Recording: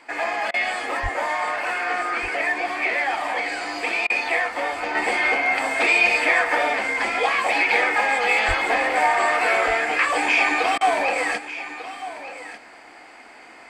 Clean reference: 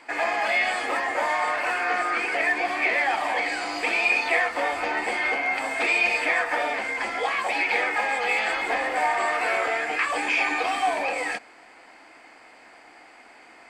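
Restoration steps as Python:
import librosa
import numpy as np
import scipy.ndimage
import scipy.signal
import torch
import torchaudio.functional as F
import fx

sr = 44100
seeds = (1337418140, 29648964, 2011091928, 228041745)

y = fx.highpass(x, sr, hz=140.0, slope=24, at=(1.02, 1.14), fade=0.02)
y = fx.highpass(y, sr, hz=140.0, slope=24, at=(8.47, 8.59), fade=0.02)
y = fx.fix_interpolate(y, sr, at_s=(0.51, 4.07, 10.78), length_ms=28.0)
y = fx.fix_echo_inverse(y, sr, delay_ms=1195, level_db=-13.5)
y = fx.gain(y, sr, db=fx.steps((0.0, 0.0), (4.95, -4.5)))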